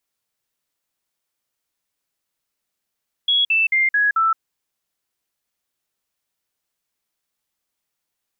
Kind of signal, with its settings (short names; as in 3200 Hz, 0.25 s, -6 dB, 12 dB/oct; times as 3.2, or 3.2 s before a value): stepped sine 3340 Hz down, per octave 3, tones 5, 0.17 s, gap 0.05 s -14 dBFS